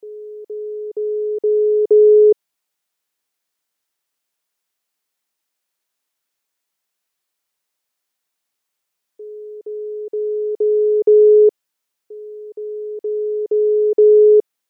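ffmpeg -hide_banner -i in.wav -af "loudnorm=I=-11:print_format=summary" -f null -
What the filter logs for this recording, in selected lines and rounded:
Input Integrated:    -14.3 LUFS
Input True Peak:      -5.8 dBTP
Input LRA:             6.9 LU
Input Threshold:     -26.3 LUFS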